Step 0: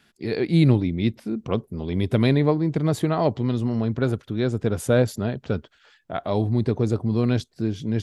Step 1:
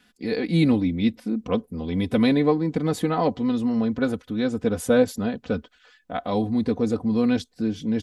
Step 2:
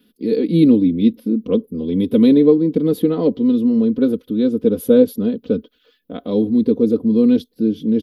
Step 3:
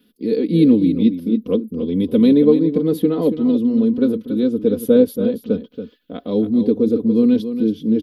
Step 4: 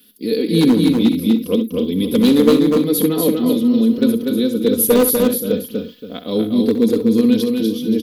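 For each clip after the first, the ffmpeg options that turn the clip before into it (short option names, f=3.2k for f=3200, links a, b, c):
-af "aecho=1:1:4:0.77,volume=-1.5dB"
-af "firequalizer=gain_entry='entry(120,0);entry(190,9);entry(270,12);entry(460,12);entry(750,-9);entry(1100,-3);entry(1800,-8);entry(3300,4);entry(7500,-12);entry(12000,14)':delay=0.05:min_phase=1,volume=-3dB"
-af "aecho=1:1:280:0.316,volume=-1dB"
-af "asoftclip=type=hard:threshold=-7dB,aecho=1:1:66|245|303:0.282|0.631|0.133,crystalizer=i=6.5:c=0,volume=-1dB"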